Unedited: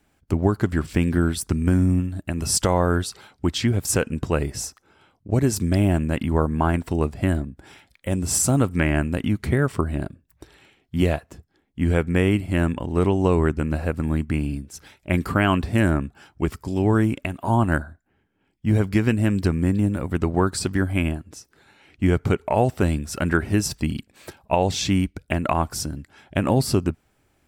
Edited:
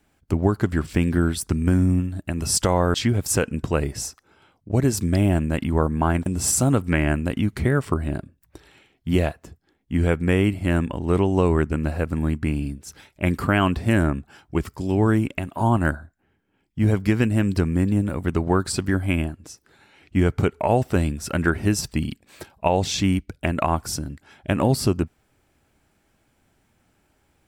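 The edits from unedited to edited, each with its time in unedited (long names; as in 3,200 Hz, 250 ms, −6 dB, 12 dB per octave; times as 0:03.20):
0:02.94–0:03.53: remove
0:06.85–0:08.13: remove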